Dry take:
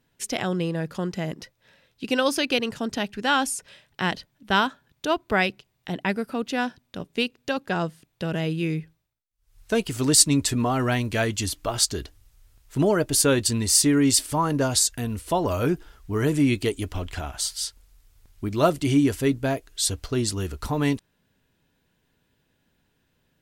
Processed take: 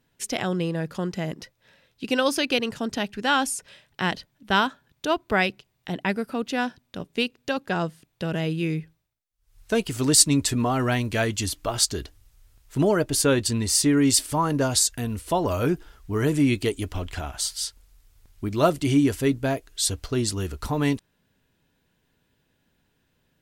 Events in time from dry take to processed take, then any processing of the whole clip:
13.03–13.98 high shelf 5400 Hz -4.5 dB

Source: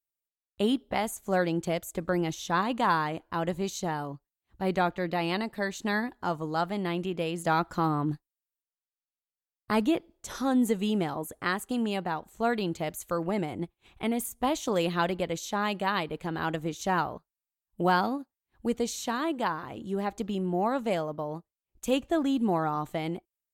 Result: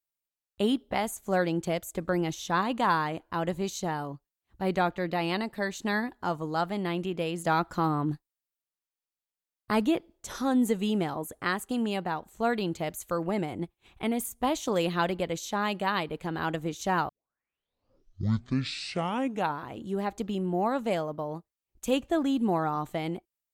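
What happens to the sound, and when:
17.09 tape start 2.65 s

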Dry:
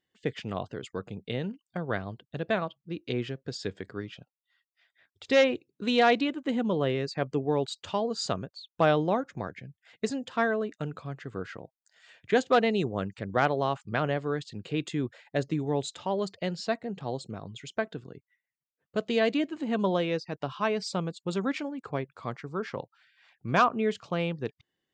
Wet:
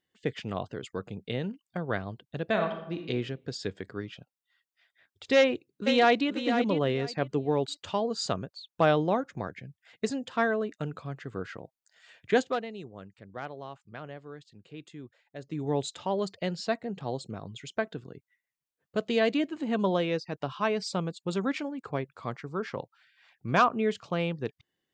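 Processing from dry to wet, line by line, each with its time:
2.49–3.1 reverb throw, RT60 0.8 s, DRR 4 dB
5.37–6.29 echo throw 0.49 s, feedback 20%, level -8 dB
12.4–15.66 dip -14 dB, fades 0.30 s quadratic

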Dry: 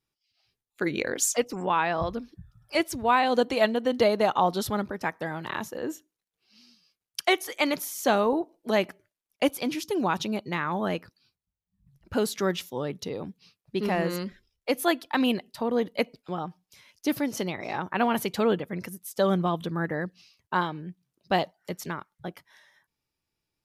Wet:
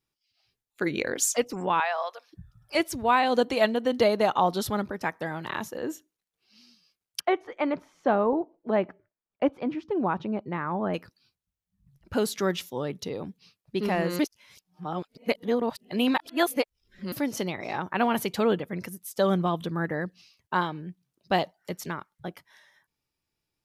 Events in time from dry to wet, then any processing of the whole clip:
1.8–2.33 steep high-pass 580 Hz
7.2–10.94 LPF 1400 Hz
14.19–17.12 reverse

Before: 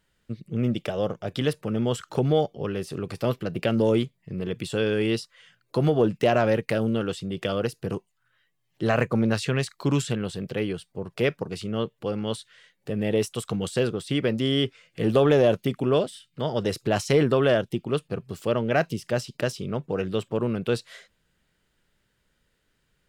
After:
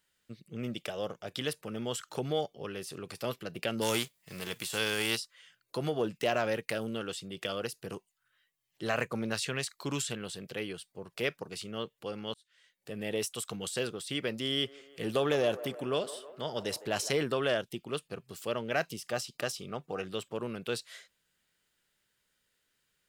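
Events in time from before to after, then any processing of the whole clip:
3.81–5.16 spectral whitening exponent 0.6
12.34–12.96 fade in
14.47–17.11 band-limited delay 0.158 s, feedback 63%, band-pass 810 Hz, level -13.5 dB
18.9–20.14 small resonant body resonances 750/1200 Hz, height 9 dB
whole clip: tilt +2.5 dB/oct; gain -7 dB

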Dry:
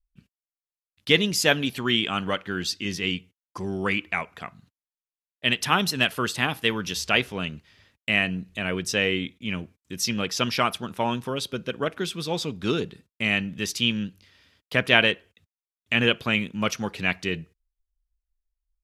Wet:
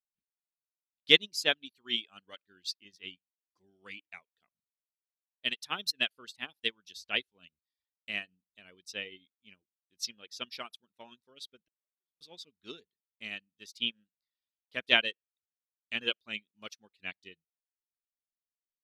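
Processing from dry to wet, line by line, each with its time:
11.62–12.21 flipped gate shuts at -26 dBFS, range -37 dB
whole clip: reverb removal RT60 0.64 s; graphic EQ 125/1000/4000 Hz -11/-3/+9 dB; upward expander 2.5:1, over -36 dBFS; gain -3.5 dB

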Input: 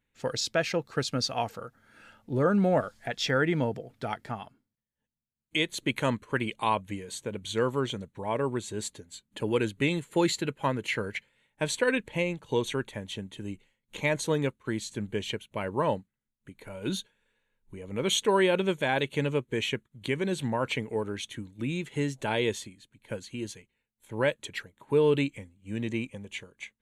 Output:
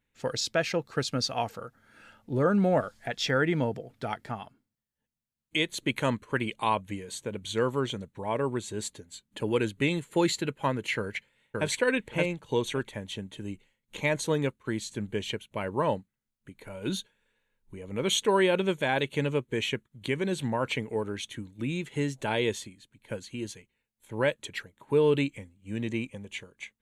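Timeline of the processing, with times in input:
10.97–11.68 echo throw 0.57 s, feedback 15%, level -2 dB

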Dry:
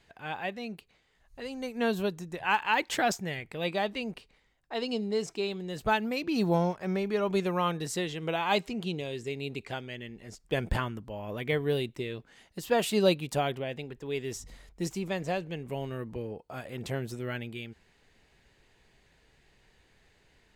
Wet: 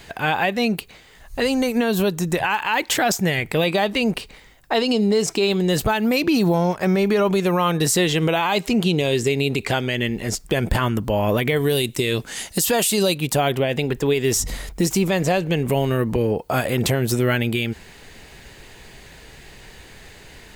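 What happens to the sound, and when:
11.56–13.18 bell 8700 Hz +11.5 dB 2 oct
whole clip: compressor 2.5:1, threshold -37 dBFS; high shelf 10000 Hz +11.5 dB; maximiser +29.5 dB; gain -9 dB

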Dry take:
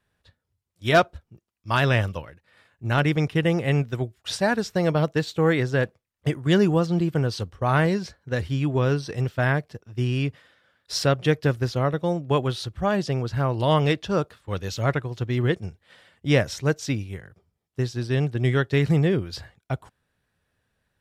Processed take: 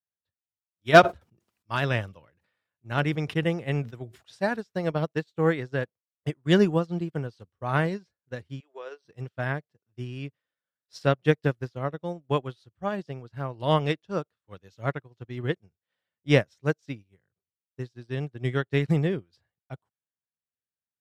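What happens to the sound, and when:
0.99–4.6 sustainer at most 54 dB/s
8.6–9.05 elliptic band-pass 440–7900 Hz
whole clip: HPF 94 Hz; high shelf 5600 Hz -3.5 dB; upward expander 2.5:1, over -37 dBFS; gain +5 dB

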